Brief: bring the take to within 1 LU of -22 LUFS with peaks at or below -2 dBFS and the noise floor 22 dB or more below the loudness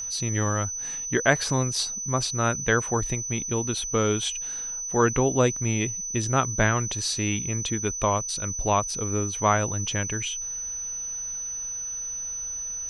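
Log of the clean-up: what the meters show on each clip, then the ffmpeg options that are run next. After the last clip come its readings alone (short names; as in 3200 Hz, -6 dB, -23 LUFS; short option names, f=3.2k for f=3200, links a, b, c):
steady tone 6000 Hz; tone level -30 dBFS; loudness -25.5 LUFS; peak -6.0 dBFS; loudness target -22.0 LUFS
-> -af "bandreject=f=6k:w=30"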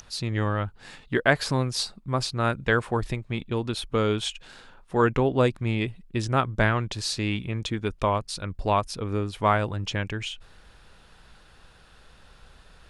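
steady tone none; loudness -26.5 LUFS; peak -5.5 dBFS; loudness target -22.0 LUFS
-> -af "volume=4.5dB,alimiter=limit=-2dB:level=0:latency=1"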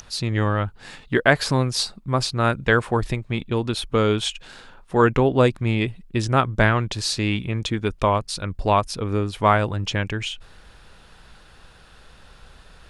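loudness -22.0 LUFS; peak -2.0 dBFS; noise floor -49 dBFS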